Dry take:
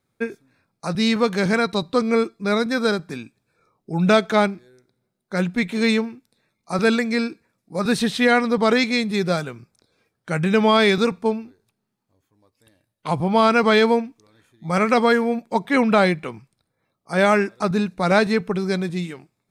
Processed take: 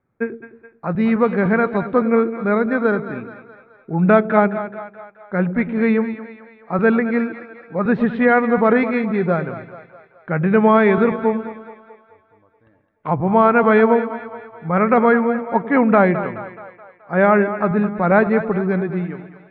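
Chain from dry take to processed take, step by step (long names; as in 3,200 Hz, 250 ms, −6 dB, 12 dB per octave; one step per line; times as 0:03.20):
low-pass filter 1,900 Hz 24 dB per octave
on a send: echo with a time of its own for lows and highs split 520 Hz, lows 105 ms, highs 213 ms, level −11.5 dB
on the sum: level +3 dB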